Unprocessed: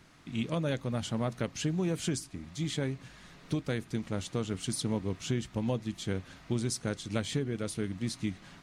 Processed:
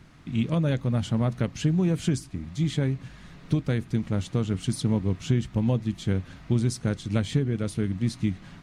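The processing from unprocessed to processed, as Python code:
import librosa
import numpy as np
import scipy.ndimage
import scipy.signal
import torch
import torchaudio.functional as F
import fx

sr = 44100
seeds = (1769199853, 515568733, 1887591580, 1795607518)

y = fx.bass_treble(x, sr, bass_db=8, treble_db=-4)
y = y * 10.0 ** (2.5 / 20.0)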